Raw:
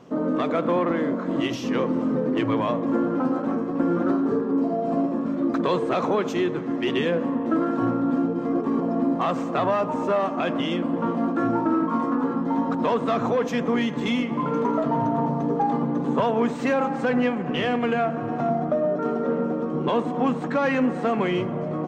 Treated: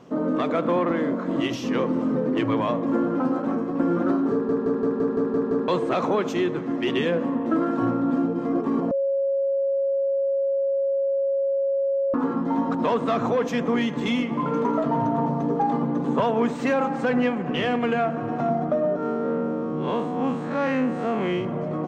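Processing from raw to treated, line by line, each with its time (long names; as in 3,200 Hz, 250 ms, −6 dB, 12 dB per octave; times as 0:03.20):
0:04.32: stutter in place 0.17 s, 8 plays
0:08.91–0:12.14: beep over 549 Hz −20 dBFS
0:18.96–0:21.45: spectrum smeared in time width 104 ms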